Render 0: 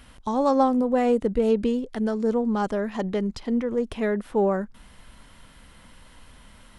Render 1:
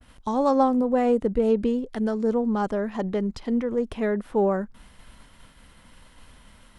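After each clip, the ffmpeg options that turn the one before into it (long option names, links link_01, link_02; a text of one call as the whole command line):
ffmpeg -i in.wav -af "agate=range=-33dB:threshold=-46dB:ratio=3:detection=peak,adynamicequalizer=threshold=0.00708:dfrequency=1900:dqfactor=0.7:tfrequency=1900:tqfactor=0.7:attack=5:release=100:ratio=0.375:range=2.5:mode=cutabove:tftype=highshelf" out.wav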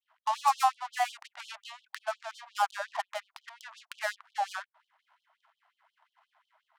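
ffmpeg -i in.wav -af "adynamicsmooth=sensitivity=7.5:basefreq=570,highshelf=frequency=4800:gain=5.5,afftfilt=real='re*gte(b*sr/1024,600*pow(3000/600,0.5+0.5*sin(2*PI*5.6*pts/sr)))':imag='im*gte(b*sr/1024,600*pow(3000/600,0.5+0.5*sin(2*PI*5.6*pts/sr)))':win_size=1024:overlap=0.75,volume=2.5dB" out.wav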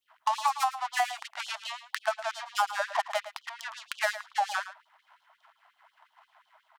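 ffmpeg -i in.wav -filter_complex "[0:a]acompressor=threshold=-31dB:ratio=10,asplit=2[link_01][link_02];[link_02]adelay=110.8,volume=-13dB,highshelf=frequency=4000:gain=-2.49[link_03];[link_01][link_03]amix=inputs=2:normalize=0,volume=8dB" out.wav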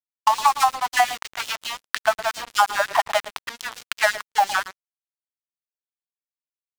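ffmpeg -i in.wav -filter_complex "[0:a]asplit=2[link_01][link_02];[link_02]aeval=exprs='sgn(val(0))*max(abs(val(0))-0.0126,0)':channel_layout=same,volume=-4dB[link_03];[link_01][link_03]amix=inputs=2:normalize=0,acrusher=bits=5:mix=0:aa=0.5,volume=5.5dB" out.wav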